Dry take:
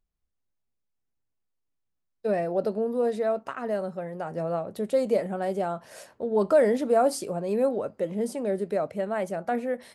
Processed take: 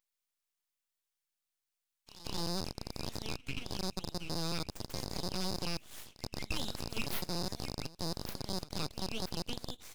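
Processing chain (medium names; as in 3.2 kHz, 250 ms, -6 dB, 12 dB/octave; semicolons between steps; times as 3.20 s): rattle on loud lows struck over -39 dBFS, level -22 dBFS; Chebyshev high-pass 1.1 kHz, order 6; full-wave rectifier; on a send: reverse echo 179 ms -19.5 dB; on the sum: tape noise reduction on one side only encoder only; trim +1 dB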